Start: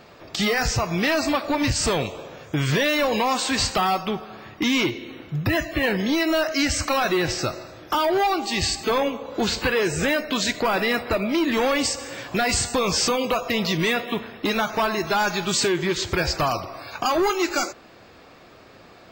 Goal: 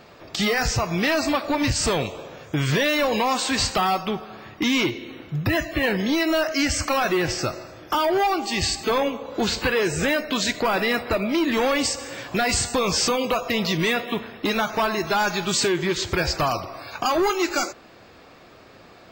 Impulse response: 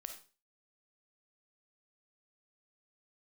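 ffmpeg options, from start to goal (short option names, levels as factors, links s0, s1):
-filter_complex "[0:a]asettb=1/sr,asplit=3[s0][s1][s2];[s0]atrim=end=6.374[s3];[s1]atrim=start=6.37:end=8.63,asetpts=PTS-STARTPTS,afade=t=in:d=0.004:c=qsin,afade=t=out:st=2.256:d=0.004:c=qsin,bandreject=f=3900:w=11[s4];[s2]atrim=start=8.626[s5];[s3][s4]acrossfade=d=0.004:c1=hsin:c2=qsin[s6];[s6][s5]acrossfade=d=0.004:c1=qsin:c2=hsin"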